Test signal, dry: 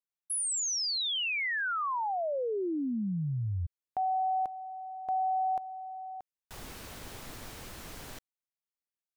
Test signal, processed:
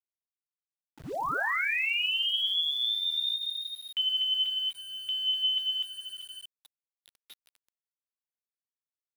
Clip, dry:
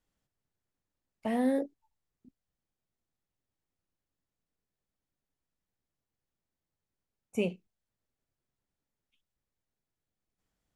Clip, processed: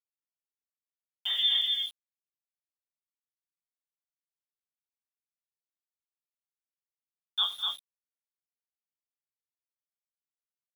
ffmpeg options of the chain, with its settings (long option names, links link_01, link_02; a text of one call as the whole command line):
ffmpeg -i in.wav -af "agate=range=-33dB:threshold=-41dB:ratio=3:release=34:detection=rms,anlmdn=0.0251,equalizer=frequency=95:width=3.5:gain=-12.5,bandreject=frequency=60:width_type=h:width=6,bandreject=frequency=120:width_type=h:width=6,bandreject=frequency=180:width_type=h:width=6,bandreject=frequency=240:width_type=h:width=6,acontrast=33,lowpass=frequency=3200:width_type=q:width=0.5098,lowpass=frequency=3200:width_type=q:width=0.6013,lowpass=frequency=3200:width_type=q:width=0.9,lowpass=frequency=3200:width_type=q:width=2.563,afreqshift=-3800,flanger=delay=4:depth=7.5:regen=46:speed=0.2:shape=sinusoidal,aecho=1:1:80|202|240|247:0.141|0.158|0.106|0.668,aeval=exprs='val(0)*gte(abs(val(0)),0.00596)':channel_layout=same" out.wav